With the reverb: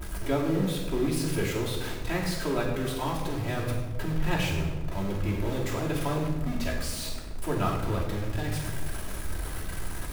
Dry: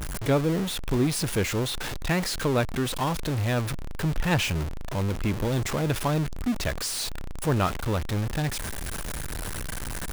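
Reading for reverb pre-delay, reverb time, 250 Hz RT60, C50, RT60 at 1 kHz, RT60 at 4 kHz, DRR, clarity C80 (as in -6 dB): 3 ms, 1.4 s, 1.8 s, 4.0 dB, 1.2 s, 0.80 s, -6.5 dB, 6.0 dB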